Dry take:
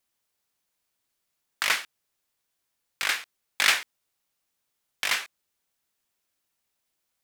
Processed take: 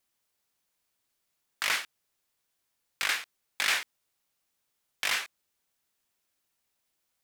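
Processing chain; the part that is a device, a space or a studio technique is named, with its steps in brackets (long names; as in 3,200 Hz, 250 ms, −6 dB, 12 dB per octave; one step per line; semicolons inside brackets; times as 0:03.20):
soft clipper into limiter (soft clipping −6.5 dBFS, distortion −26 dB; brickwall limiter −16 dBFS, peak gain reduction 7 dB)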